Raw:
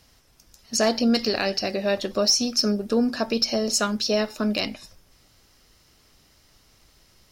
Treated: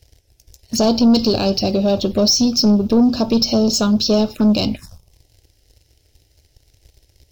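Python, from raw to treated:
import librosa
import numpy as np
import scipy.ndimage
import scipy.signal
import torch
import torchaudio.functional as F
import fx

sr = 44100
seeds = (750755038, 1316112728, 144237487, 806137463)

y = fx.peak_eq(x, sr, hz=81.0, db=14.5, octaves=2.6)
y = fx.leveller(y, sr, passes=2)
y = fx.env_phaser(y, sr, low_hz=190.0, high_hz=1900.0, full_db=-14.0)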